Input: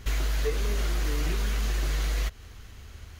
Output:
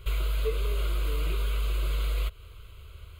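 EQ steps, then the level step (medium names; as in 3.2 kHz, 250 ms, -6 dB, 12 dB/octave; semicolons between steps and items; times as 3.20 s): static phaser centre 1.2 kHz, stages 8; 0.0 dB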